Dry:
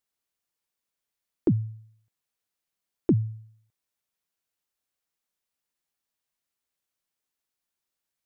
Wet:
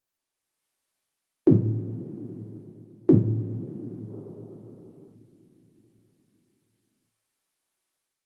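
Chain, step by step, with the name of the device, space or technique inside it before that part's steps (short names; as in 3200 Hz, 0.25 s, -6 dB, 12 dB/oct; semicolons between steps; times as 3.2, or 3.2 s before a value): two-slope reverb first 0.4 s, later 4.8 s, from -19 dB, DRR -2.5 dB; dynamic EQ 110 Hz, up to +8 dB, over -38 dBFS, Q 4.2; spectral gain 4.1–5.14, 370–1400 Hz +9 dB; video call (HPF 130 Hz 12 dB/oct; AGC gain up to 9 dB; gain -4 dB; Opus 32 kbps 48000 Hz)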